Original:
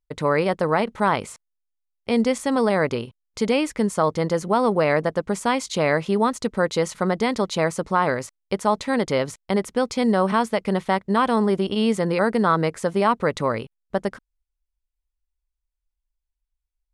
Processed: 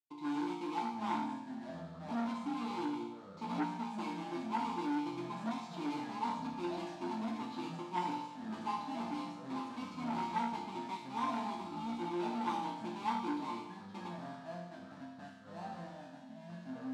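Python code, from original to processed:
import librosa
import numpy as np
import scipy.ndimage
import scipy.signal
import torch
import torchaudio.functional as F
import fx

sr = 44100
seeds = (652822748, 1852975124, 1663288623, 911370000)

y = fx.halfwave_hold(x, sr)
y = fx.vowel_filter(y, sr, vowel='u')
y = fx.resonator_bank(y, sr, root=46, chord='major', decay_s=0.82)
y = fx.echo_pitch(y, sr, ms=655, semitones=-5, count=2, db_per_echo=-6.0)
y = fx.graphic_eq(y, sr, hz=(125, 250, 500, 1000, 2000, 4000, 8000), db=(-9, 4, -7, 11, -9, 9, 7))
y = fx.transformer_sat(y, sr, knee_hz=890.0)
y = F.gain(torch.from_numpy(y), 10.0).numpy()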